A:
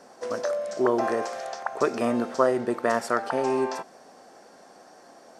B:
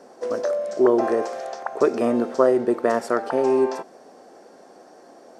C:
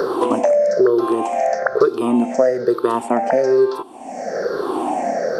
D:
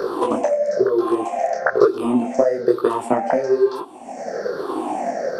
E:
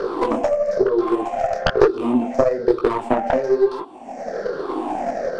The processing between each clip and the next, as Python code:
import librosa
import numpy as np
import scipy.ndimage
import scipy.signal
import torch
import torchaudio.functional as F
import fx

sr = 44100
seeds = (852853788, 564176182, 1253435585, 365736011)

y1 = fx.peak_eq(x, sr, hz=380.0, db=9.0, octaves=1.7)
y1 = F.gain(torch.from_numpy(y1), -2.0).numpy()
y2 = fx.spec_ripple(y1, sr, per_octave=0.6, drift_hz=-1.1, depth_db=19)
y2 = fx.band_squash(y2, sr, depth_pct=100)
y3 = fx.transient(y2, sr, attack_db=7, sustain_db=3)
y3 = fx.detune_double(y3, sr, cents=35)
y3 = F.gain(torch.from_numpy(y3), -1.0).numpy()
y4 = fx.tracing_dist(y3, sr, depth_ms=0.24)
y4 = fx.air_absorb(y4, sr, metres=90.0)